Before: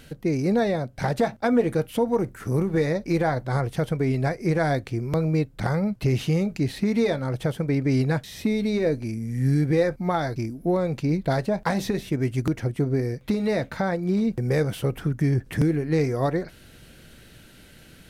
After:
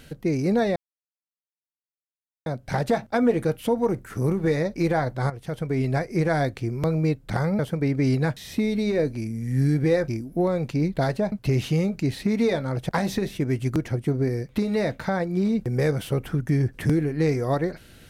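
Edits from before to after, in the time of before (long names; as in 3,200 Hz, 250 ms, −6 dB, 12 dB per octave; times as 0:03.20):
0:00.76: splice in silence 1.70 s
0:03.60–0:04.15: fade in, from −13 dB
0:05.89–0:07.46: move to 0:11.61
0:09.95–0:10.37: remove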